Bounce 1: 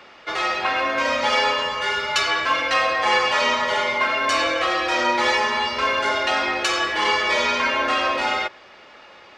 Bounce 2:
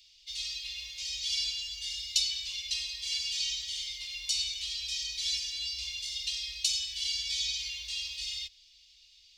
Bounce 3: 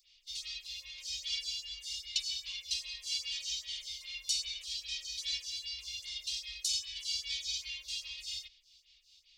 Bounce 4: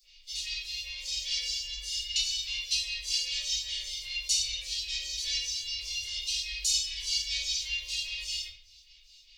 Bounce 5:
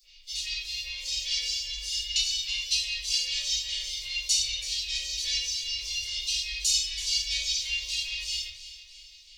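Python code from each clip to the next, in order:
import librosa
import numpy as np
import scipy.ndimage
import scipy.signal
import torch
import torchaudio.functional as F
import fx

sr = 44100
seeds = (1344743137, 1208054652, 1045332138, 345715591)

y1 = scipy.signal.sosfilt(scipy.signal.cheby2(4, 50, [140.0, 1600.0], 'bandstop', fs=sr, output='sos'), x)
y2 = fx.stagger_phaser(y1, sr, hz=2.5)
y3 = fx.room_shoebox(y2, sr, seeds[0], volume_m3=42.0, walls='mixed', distance_m=1.4)
y4 = fx.echo_feedback(y3, sr, ms=330, feedback_pct=53, wet_db=-14)
y4 = y4 * 10.0 ** (2.5 / 20.0)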